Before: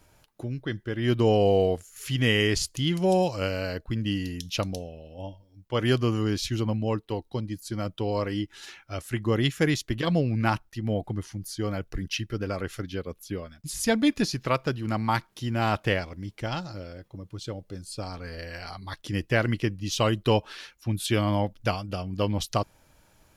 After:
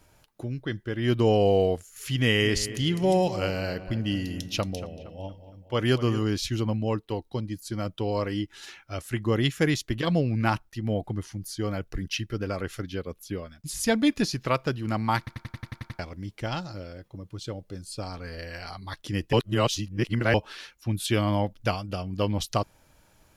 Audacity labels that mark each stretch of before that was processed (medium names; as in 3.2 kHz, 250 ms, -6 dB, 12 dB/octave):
2.180000	6.230000	filtered feedback delay 232 ms, feedback 51%, low-pass 2.7 kHz, level -13 dB
15.180000	15.180000	stutter in place 0.09 s, 9 plays
19.330000	20.340000	reverse